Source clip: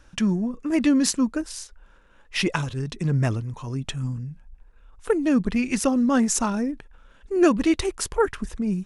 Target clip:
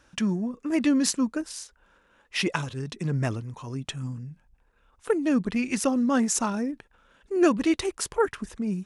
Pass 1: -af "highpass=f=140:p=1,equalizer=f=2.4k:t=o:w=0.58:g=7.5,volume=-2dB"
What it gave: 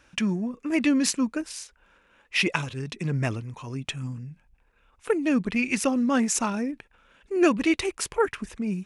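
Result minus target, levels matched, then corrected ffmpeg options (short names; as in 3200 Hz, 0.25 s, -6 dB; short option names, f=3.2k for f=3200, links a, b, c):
2000 Hz band +4.0 dB
-af "highpass=f=140:p=1,volume=-2dB"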